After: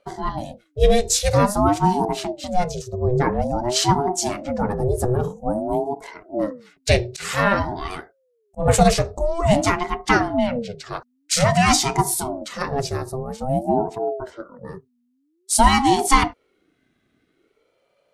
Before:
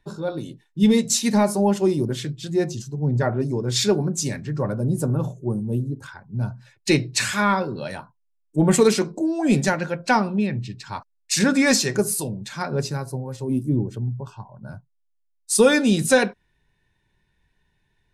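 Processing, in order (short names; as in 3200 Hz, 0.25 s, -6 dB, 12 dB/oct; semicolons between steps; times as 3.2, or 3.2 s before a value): 7.09–8.66 auto swell 0.17 s; ring modulator with a swept carrier 400 Hz, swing 40%, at 0.5 Hz; gain +4.5 dB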